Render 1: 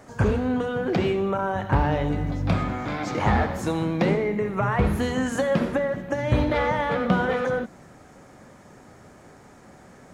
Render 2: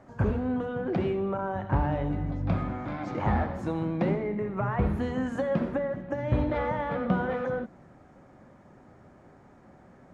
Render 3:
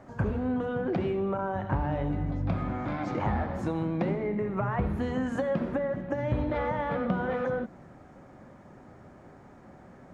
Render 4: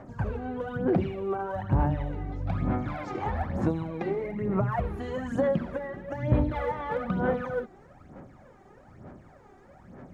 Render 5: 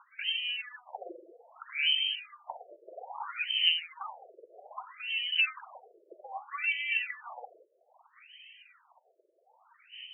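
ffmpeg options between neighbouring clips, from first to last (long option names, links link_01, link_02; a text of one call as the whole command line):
ffmpeg -i in.wav -af "lowpass=frequency=1200:poles=1,bandreject=frequency=450:width=12,volume=-4dB" out.wav
ffmpeg -i in.wav -af "acompressor=threshold=-30dB:ratio=2.5,volume=3dB" out.wav
ffmpeg -i in.wav -af "aphaser=in_gain=1:out_gain=1:delay=2.6:decay=0.66:speed=1.1:type=sinusoidal,volume=-3.5dB" out.wav
ffmpeg -i in.wav -af "aexciter=amount=15.3:drive=5.5:freq=2500,lowpass=frequency=2700:width_type=q:width=0.5098,lowpass=frequency=2700:width_type=q:width=0.6013,lowpass=frequency=2700:width_type=q:width=0.9,lowpass=frequency=2700:width_type=q:width=2.563,afreqshift=-3200,afftfilt=real='re*between(b*sr/1024,450*pow(2500/450,0.5+0.5*sin(2*PI*0.62*pts/sr))/1.41,450*pow(2500/450,0.5+0.5*sin(2*PI*0.62*pts/sr))*1.41)':imag='im*between(b*sr/1024,450*pow(2500/450,0.5+0.5*sin(2*PI*0.62*pts/sr))/1.41,450*pow(2500/450,0.5+0.5*sin(2*PI*0.62*pts/sr))*1.41)':win_size=1024:overlap=0.75" out.wav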